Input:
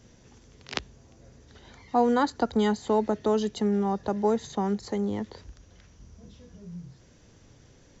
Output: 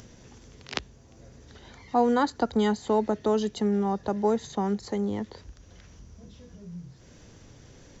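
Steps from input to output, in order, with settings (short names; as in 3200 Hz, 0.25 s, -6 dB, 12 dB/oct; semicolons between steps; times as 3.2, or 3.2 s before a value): upward compressor, threshold -43 dBFS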